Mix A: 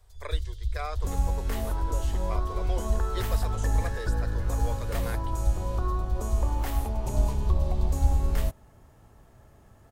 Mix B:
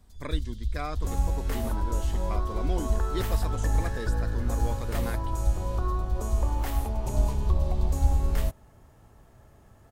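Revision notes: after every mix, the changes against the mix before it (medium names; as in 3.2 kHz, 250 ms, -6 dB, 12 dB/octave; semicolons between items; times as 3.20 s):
speech: remove steep high-pass 390 Hz 48 dB/octave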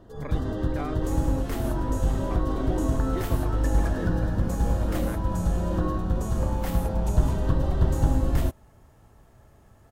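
speech: add distance through air 440 m; first sound: remove inverse Chebyshev band-stop 220–1300 Hz, stop band 60 dB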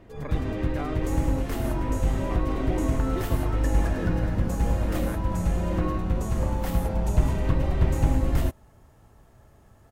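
first sound: remove Butterworth band-stop 2.3 kHz, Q 1.8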